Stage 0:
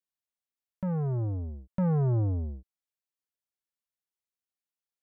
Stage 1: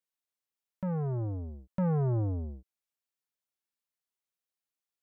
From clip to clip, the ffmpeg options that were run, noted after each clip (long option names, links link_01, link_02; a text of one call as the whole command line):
ffmpeg -i in.wav -af "lowshelf=frequency=160:gain=-5" out.wav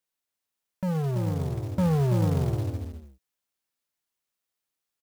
ffmpeg -i in.wav -af "aecho=1:1:56|332|436|555:0.126|0.473|0.398|0.237,acrusher=bits=5:mode=log:mix=0:aa=0.000001,volume=4.5dB" out.wav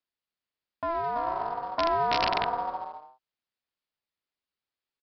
ffmpeg -i in.wav -af "aeval=exprs='val(0)*sin(2*PI*840*n/s)':channel_layout=same,aresample=11025,aeval=exprs='(mod(7.08*val(0)+1,2)-1)/7.08':channel_layout=same,aresample=44100" out.wav